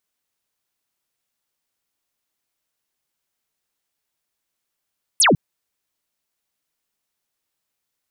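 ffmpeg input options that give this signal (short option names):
-f lavfi -i "aevalsrc='0.282*clip(t/0.002,0,1)*clip((0.15-t)/0.002,0,1)*sin(2*PI*12000*0.15/log(120/12000)*(exp(log(120/12000)*t/0.15)-1))':d=0.15:s=44100"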